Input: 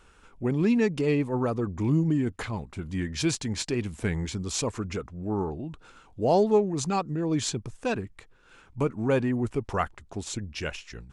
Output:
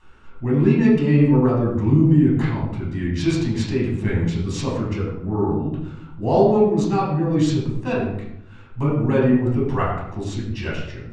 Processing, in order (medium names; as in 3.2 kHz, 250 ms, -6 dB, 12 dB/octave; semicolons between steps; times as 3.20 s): distance through air 55 m; reverberation RT60 0.75 s, pre-delay 9 ms, DRR -6 dB; trim -4 dB